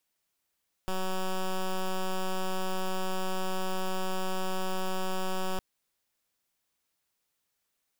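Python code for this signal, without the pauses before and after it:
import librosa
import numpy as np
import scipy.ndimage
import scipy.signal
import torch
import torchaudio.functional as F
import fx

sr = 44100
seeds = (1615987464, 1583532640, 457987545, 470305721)

y = fx.pulse(sr, length_s=4.71, hz=187.0, level_db=-29.5, duty_pct=9)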